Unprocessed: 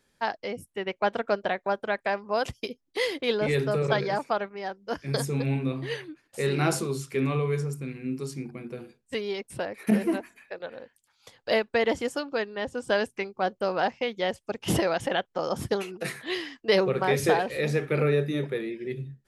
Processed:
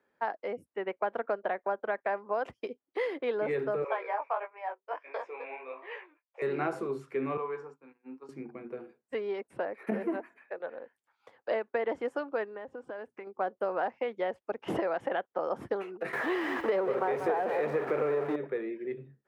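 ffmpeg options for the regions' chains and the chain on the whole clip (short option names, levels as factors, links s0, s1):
-filter_complex "[0:a]asettb=1/sr,asplit=3[s0][s1][s2];[s0]atrim=end=3.844[s3];[s1]atrim=start=3.84:end=6.42,asetpts=PTS-STARTPTS,afade=t=in:d=0.004:c=qsin,afade=t=out:st=2.576:d=0.004:c=qsin,agate=range=0.0224:threshold=0.00447:ratio=3:release=100:detection=peak,highpass=f=500:w=0.5412,highpass=f=500:w=1.3066,equalizer=f=1000:t=q:w=4:g=7,equalizer=f=1500:t=q:w=4:g=-3,equalizer=f=2400:t=q:w=4:g=10,equalizer=f=4400:t=q:w=4:g=-9,lowpass=f=5400:w=0.5412,lowpass=f=5400:w=1.3066,flanger=delay=16:depth=4.1:speed=1.4[s4];[s2]atrim=start=6.416[s5];[s3][s4]acrossfade=d=0.004:c1=hsin:c2=qsin[s6];[s6][s5]acrossfade=d=0.004:c1=qsin:c2=hsin,asettb=1/sr,asplit=3[s7][s8][s9];[s7]atrim=end=7.374[s10];[s8]atrim=start=7.37:end=8.29,asetpts=PTS-STARTPTS,afade=t=in:d=0.004:c=qsin,afade=t=out:st=0.916:d=0.004:c=qsin,agate=range=0.0224:threshold=0.0398:ratio=3:release=100:detection=peak,highpass=f=220:w=0.5412,highpass=f=220:w=1.3066,equalizer=f=230:t=q:w=4:g=-7,equalizer=f=380:t=q:w=4:g=-10,equalizer=f=630:t=q:w=4:g=-10,equalizer=f=900:t=q:w=4:g=10,equalizer=f=2100:t=q:w=4:g=-6,equalizer=f=3600:t=q:w=4:g=-5,lowpass=f=7100:w=0.5412,lowpass=f=7100:w=1.3066[s11];[s9]atrim=start=8.286[s12];[s10][s11]acrossfade=d=0.004:c1=hsin:c2=qsin[s13];[s13][s12]acrossfade=d=0.004:c1=qsin:c2=hsin,asettb=1/sr,asplit=3[s14][s15][s16];[s14]atrim=end=12.564[s17];[s15]atrim=start=12.56:end=13.27,asetpts=PTS-STARTPTS,afade=t=in:d=0.004:c=qsin,afade=t=out:st=0.706:d=0.004:c=qsin,highshelf=f=6800:g=-11.5,acompressor=threshold=0.0158:ratio=8:attack=3.2:release=140:knee=1:detection=peak[s18];[s16]atrim=start=13.266[s19];[s17][s18]acrossfade=d=0.004:c1=hsin:c2=qsin[s20];[s20][s19]acrossfade=d=0.004:c1=qsin:c2=hsin,asettb=1/sr,asplit=3[s21][s22][s23];[s21]atrim=end=16.134[s24];[s22]atrim=start=16.13:end=18.36,asetpts=PTS-STARTPTS,afade=t=in:d=0.004:c=qsin,afade=t=out:st=2.226:d=0.004:c=qsin,aeval=exprs='val(0)+0.5*0.0562*sgn(val(0))':c=same,equalizer=f=750:t=o:w=2:g=4.5,aecho=1:1:188:0.282,atrim=end_sample=98343[s25];[s23]atrim=start=18.356[s26];[s24][s25]acrossfade=d=0.004:c1=hsin:c2=qsin[s27];[s27][s26]acrossfade=d=0.004:c1=qsin:c2=hsin,highpass=56,acrossover=split=280 2000:gain=0.141 1 0.0631[s28][s29][s30];[s28][s29][s30]amix=inputs=3:normalize=0,acompressor=threshold=0.0447:ratio=5"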